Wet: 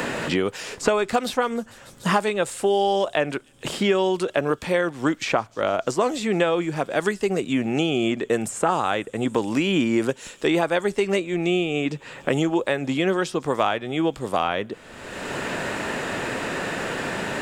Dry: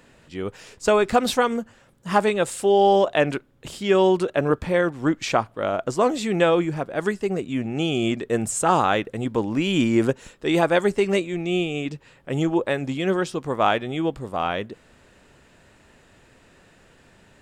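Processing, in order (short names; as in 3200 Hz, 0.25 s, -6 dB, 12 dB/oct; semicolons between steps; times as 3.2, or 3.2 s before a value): low shelf 230 Hz -6.5 dB; on a send: thin delay 0.146 s, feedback 73%, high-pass 5500 Hz, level -22.5 dB; on the sum: three-band squash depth 100%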